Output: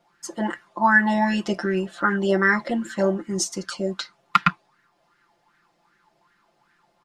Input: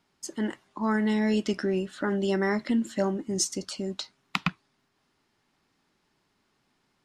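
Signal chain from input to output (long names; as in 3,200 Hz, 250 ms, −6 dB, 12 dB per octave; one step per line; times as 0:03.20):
comb filter 5.8 ms, depth 96%
auto-filter bell 2.6 Hz 600–1,700 Hz +18 dB
level −1.5 dB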